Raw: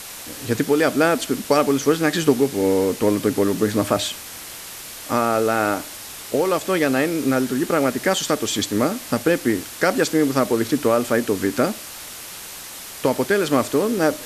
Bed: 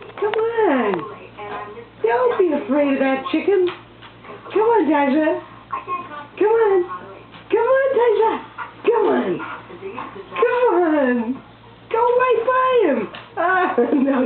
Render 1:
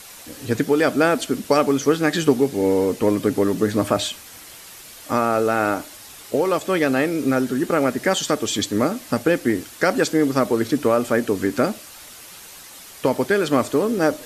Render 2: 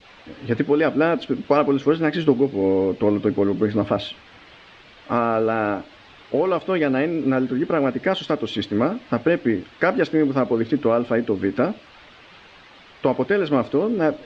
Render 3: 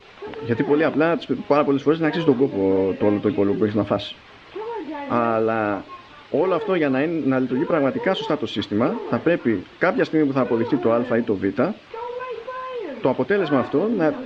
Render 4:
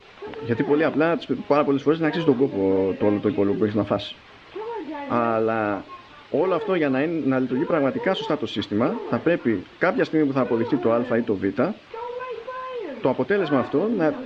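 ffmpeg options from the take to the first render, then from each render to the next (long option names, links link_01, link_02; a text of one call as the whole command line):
ffmpeg -i in.wav -af "afftdn=noise_reduction=7:noise_floor=-36" out.wav
ffmpeg -i in.wav -af "lowpass=frequency=3400:width=0.5412,lowpass=frequency=3400:width=1.3066,adynamicequalizer=threshold=0.0224:dfrequency=1400:dqfactor=0.85:tfrequency=1400:tqfactor=0.85:attack=5:release=100:ratio=0.375:range=3:mode=cutabove:tftype=bell" out.wav
ffmpeg -i in.wav -i bed.wav -filter_complex "[1:a]volume=-14.5dB[link_01];[0:a][link_01]amix=inputs=2:normalize=0" out.wav
ffmpeg -i in.wav -af "volume=-1.5dB" out.wav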